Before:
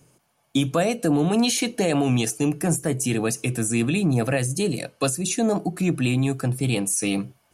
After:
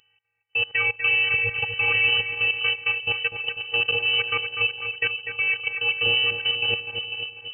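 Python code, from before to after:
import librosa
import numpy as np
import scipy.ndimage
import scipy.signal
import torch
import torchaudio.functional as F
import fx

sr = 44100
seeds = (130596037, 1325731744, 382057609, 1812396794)

y = fx.rattle_buzz(x, sr, strikes_db=-34.0, level_db=-27.0)
y = fx.level_steps(y, sr, step_db=22)
y = fx.echo_split(y, sr, split_hz=330.0, low_ms=497, high_ms=246, feedback_pct=52, wet_db=-7.0)
y = fx.robotise(y, sr, hz=362.0)
y = fx.freq_invert(y, sr, carrier_hz=3000)
y = y * 10.0 ** (3.5 / 20.0)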